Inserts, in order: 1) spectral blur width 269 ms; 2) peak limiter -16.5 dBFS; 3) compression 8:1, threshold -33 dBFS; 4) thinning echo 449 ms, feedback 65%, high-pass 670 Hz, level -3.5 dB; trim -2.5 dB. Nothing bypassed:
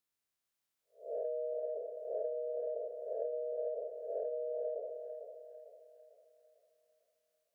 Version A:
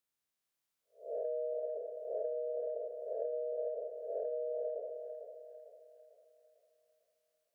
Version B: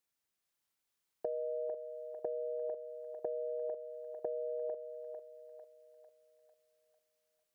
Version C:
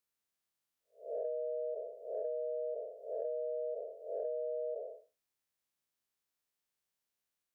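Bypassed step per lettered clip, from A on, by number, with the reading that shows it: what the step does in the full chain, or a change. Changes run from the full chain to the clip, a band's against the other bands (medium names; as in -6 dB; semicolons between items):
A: 2, mean gain reduction 2.0 dB; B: 1, crest factor change +2.5 dB; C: 4, momentary loudness spread change -9 LU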